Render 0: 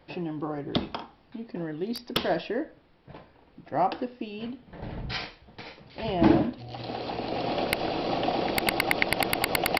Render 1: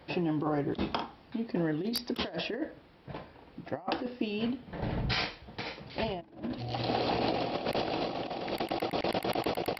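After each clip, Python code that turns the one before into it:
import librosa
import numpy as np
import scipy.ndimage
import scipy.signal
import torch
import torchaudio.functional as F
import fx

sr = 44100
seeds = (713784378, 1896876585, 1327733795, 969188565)

y = scipy.signal.sosfilt(scipy.signal.butter(2, 40.0, 'highpass', fs=sr, output='sos'), x)
y = fx.peak_eq(y, sr, hz=12000.0, db=3.0, octaves=1.3)
y = fx.over_compress(y, sr, threshold_db=-32.0, ratio=-0.5)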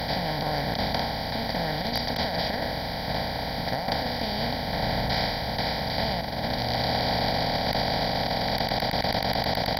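y = fx.bin_compress(x, sr, power=0.2)
y = fx.fixed_phaser(y, sr, hz=1800.0, stages=8)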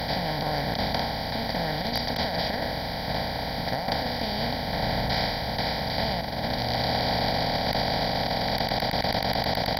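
y = x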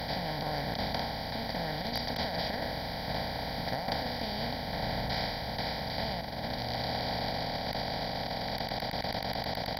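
y = fx.rider(x, sr, range_db=10, speed_s=2.0)
y = F.gain(torch.from_numpy(y), -7.0).numpy()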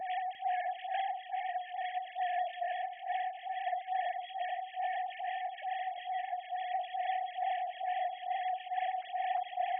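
y = fx.sine_speech(x, sr)
y = y + 10.0 ** (-8.5 / 20.0) * np.pad(y, (int(349 * sr / 1000.0), 0))[:len(y)]
y = fx.stagger_phaser(y, sr, hz=2.3)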